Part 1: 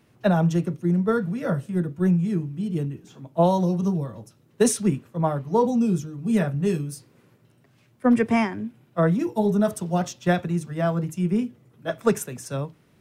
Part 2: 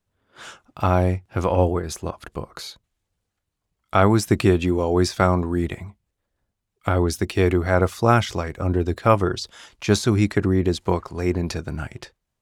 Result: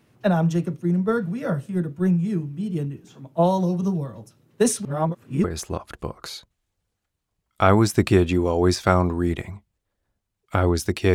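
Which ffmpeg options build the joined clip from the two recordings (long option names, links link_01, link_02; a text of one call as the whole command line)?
ffmpeg -i cue0.wav -i cue1.wav -filter_complex "[0:a]apad=whole_dur=11.14,atrim=end=11.14,asplit=2[link_01][link_02];[link_01]atrim=end=4.852[link_03];[link_02]atrim=start=4.848:end=5.442,asetpts=PTS-STARTPTS,areverse[link_04];[1:a]atrim=start=1.768:end=7.47[link_05];[link_03][link_04]acrossfade=duration=0.004:curve1=hsin:curve2=hsin[link_06];[link_06][link_05]acrossfade=duration=0.004:curve1=hsin:curve2=hsin" out.wav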